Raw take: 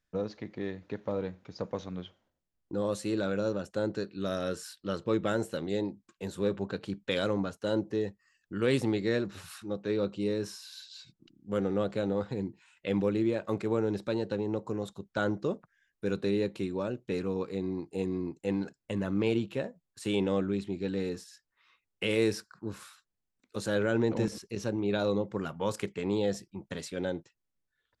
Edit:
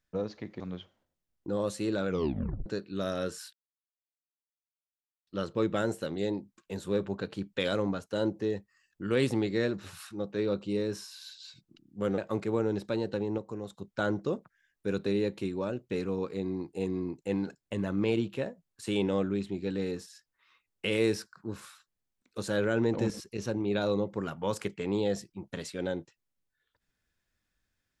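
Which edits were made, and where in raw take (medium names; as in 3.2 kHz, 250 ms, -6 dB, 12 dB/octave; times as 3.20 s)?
0.60–1.85 s: delete
3.33 s: tape stop 0.58 s
4.78 s: insert silence 1.74 s
11.69–13.36 s: delete
14.56–14.96 s: gain -4.5 dB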